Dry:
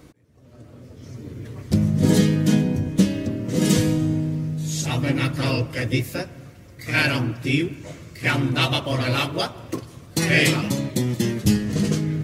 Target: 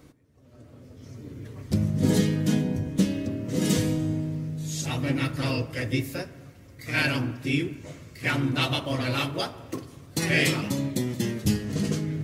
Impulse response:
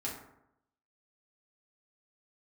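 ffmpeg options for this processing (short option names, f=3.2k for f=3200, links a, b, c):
-filter_complex "[0:a]asplit=2[a][b];[1:a]atrim=start_sample=2205,highshelf=f=12k:g=11[c];[b][c]afir=irnorm=-1:irlink=0,volume=-13dB[d];[a][d]amix=inputs=2:normalize=0,volume=-6dB"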